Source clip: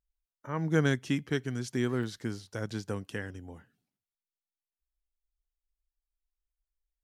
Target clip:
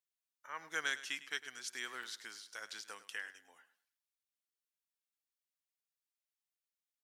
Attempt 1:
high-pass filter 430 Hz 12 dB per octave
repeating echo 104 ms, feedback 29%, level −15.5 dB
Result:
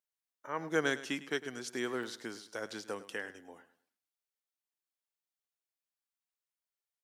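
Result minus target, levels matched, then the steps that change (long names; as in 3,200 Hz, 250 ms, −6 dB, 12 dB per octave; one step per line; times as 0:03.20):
500 Hz band +13.0 dB
change: high-pass filter 1,500 Hz 12 dB per octave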